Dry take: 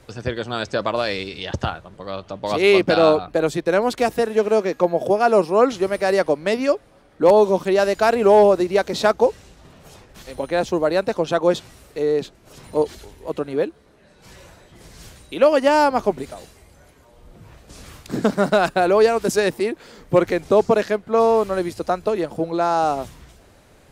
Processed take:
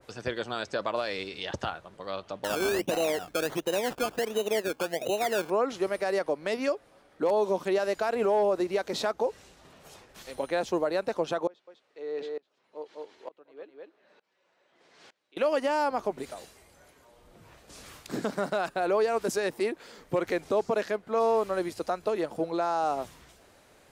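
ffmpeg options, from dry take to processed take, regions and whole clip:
ffmpeg -i in.wav -filter_complex "[0:a]asettb=1/sr,asplit=3[link_01][link_02][link_03];[link_01]atrim=end=2.444[link_04];[link_02]atrim=start=2.44:end=5.5,asetpts=PTS-STARTPTS,afade=type=in:duration=0.004:curve=qsin,afade=type=out:start_time=3.056:duration=0.004:curve=qsin,equalizer=frequency=1300:width=2.8:gain=-13,acrusher=samples=18:mix=1:aa=0.000001:lfo=1:lforange=10.8:lforate=1.4[link_05];[link_03]atrim=start=5.496[link_06];[link_04][link_05]acrossfade=duration=0.004:curve1=hsin:curve2=qsin[link_07];[link_07][link_06]acrossfade=duration=0.004:curve1=qsin:curve2=hsin,asettb=1/sr,asplit=3[link_08][link_09][link_10];[link_08]atrim=end=11.474[link_11];[link_09]atrim=start=11.47:end=15.37,asetpts=PTS-STARTPTS,afade=type=in:duration=0.004:curve=qsin,afade=type=out:start_time=3.896:duration=0.004:curve=qsin,highpass=300,lowpass=3800,aecho=1:1:203:0.422,atrim=end_sample=171990,aeval=exprs='val(0)*pow(10,-27*if(lt(mod(-1.1*n/s,1),2*abs(-1.1)/1000),1-mod(-1.1*n/s,1)/(2*abs(-1.1)/1000),(mod(-1.1*n/s,1)-2*abs(-1.1)/1000)/(1-2*abs(-1.1)/1000))/20)':channel_layout=same[link_12];[link_10]atrim=start=15.366[link_13];[link_11][link_12]acrossfade=duration=0.004:curve1=hsin:curve2=qsin[link_14];[link_14][link_13]acrossfade=duration=0.004:curve1=qsin:curve2=hsin,lowshelf=frequency=210:gain=-11.5,alimiter=limit=-13.5dB:level=0:latency=1:release=120,adynamicequalizer=threshold=0.0178:dfrequency=2000:dqfactor=0.7:tfrequency=2000:tqfactor=0.7:attack=5:release=100:ratio=0.375:range=2:mode=cutabove:tftype=highshelf,volume=-4dB" out.wav

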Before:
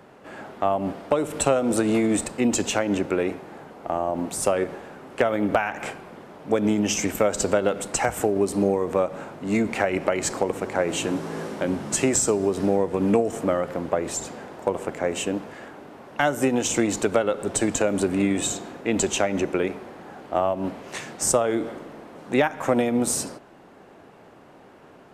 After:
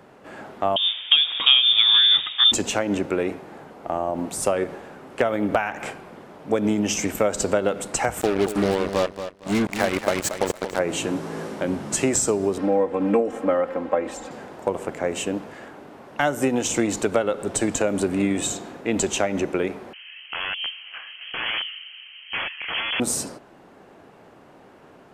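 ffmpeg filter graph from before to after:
ffmpeg -i in.wav -filter_complex "[0:a]asettb=1/sr,asplit=3[link_01][link_02][link_03];[link_01]atrim=end=0.764[link_04];[link_02]atrim=start=0.76:end=2.52,asetpts=PTS-STARTPTS,afade=type=in:duration=0.004:curve=qsin,afade=type=out:start_time=1.756:duration=0.004:curve=qsin,acontrast=28,lowpass=frequency=3200:width_type=q:width=0.5098,lowpass=frequency=3200:width_type=q:width=0.6013,lowpass=frequency=3200:width_type=q:width=0.9,lowpass=frequency=3200:width_type=q:width=2.563,afreqshift=-3800[link_05];[link_03]atrim=start=2.516[link_06];[link_04][link_05]acrossfade=duration=0.004:curve1=hsin:curve2=qsin[link_07];[link_07][link_06]acrossfade=duration=0.004:curve1=qsin:curve2=hsin,asettb=1/sr,asplit=3[link_08][link_09][link_10];[link_08]atrim=end=8.214[link_11];[link_09]atrim=start=8.21:end=10.79,asetpts=PTS-STARTPTS,afade=type=in:duration=0.004:curve=qsin,afade=type=out:start_time=2.576:duration=0.004:curve=qsin,acrusher=bits=3:mix=0:aa=0.5,aecho=1:1:230|460|690:0.316|0.0696|0.0153,atrim=end_sample=113778[link_12];[link_10]atrim=start=10.786[link_13];[link_11][link_12]acrossfade=duration=0.004:curve1=hsin:curve2=qsin[link_14];[link_14][link_13]acrossfade=duration=0.004:curve1=qsin:curve2=hsin,asettb=1/sr,asplit=3[link_15][link_16][link_17];[link_15]atrim=end=12.584[link_18];[link_16]atrim=start=12.58:end=14.31,asetpts=PTS-STARTPTS,afade=type=in:duration=0.004:curve=qsin,afade=type=out:start_time=1.726:duration=0.004:curve=qsin,bass=frequency=250:gain=-8,treble=frequency=4000:gain=-14,aecho=1:1:3.8:0.8,atrim=end_sample=76293[link_19];[link_17]atrim=start=14.306[link_20];[link_18][link_19]acrossfade=duration=0.004:curve1=hsin:curve2=qsin[link_21];[link_21][link_20]acrossfade=duration=0.004:curve1=qsin:curve2=hsin,asettb=1/sr,asplit=3[link_22][link_23][link_24];[link_22]atrim=end=19.934[link_25];[link_23]atrim=start=19.93:end=23,asetpts=PTS-STARTPTS,afade=type=in:duration=0.004:curve=qsin,afade=type=out:start_time=3.066:duration=0.004:curve=qsin,acrossover=split=190 2200:gain=0.224 1 0.0708[link_26][link_27][link_28];[link_26][link_27][link_28]amix=inputs=3:normalize=0,aeval=exprs='(mod(10.6*val(0)+1,2)-1)/10.6':channel_layout=same,lowpass=frequency=2900:width_type=q:width=0.5098,lowpass=frequency=2900:width_type=q:width=0.6013,lowpass=frequency=2900:width_type=q:width=0.9,lowpass=frequency=2900:width_type=q:width=2.563,afreqshift=-3400[link_29];[link_24]atrim=start=22.996[link_30];[link_25][link_29]acrossfade=duration=0.004:curve1=hsin:curve2=qsin[link_31];[link_31][link_30]acrossfade=duration=0.004:curve1=qsin:curve2=hsin" out.wav

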